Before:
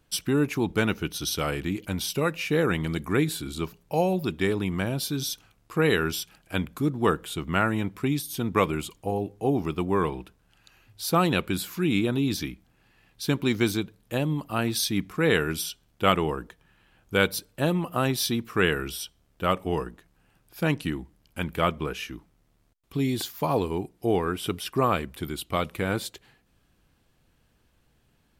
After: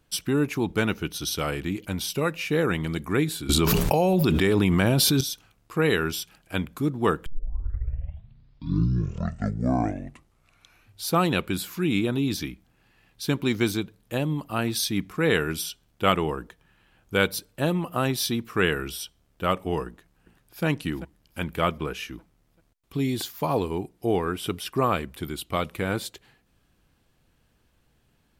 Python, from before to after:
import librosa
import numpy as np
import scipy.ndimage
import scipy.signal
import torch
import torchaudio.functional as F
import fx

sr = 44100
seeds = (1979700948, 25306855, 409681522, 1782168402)

y = fx.env_flatten(x, sr, amount_pct=100, at=(3.49, 5.21))
y = fx.echo_throw(y, sr, start_s=19.87, length_s=0.78, ms=390, feedback_pct=50, wet_db=-13.5)
y = fx.edit(y, sr, fx.tape_start(start_s=7.26, length_s=3.82), tone=tone)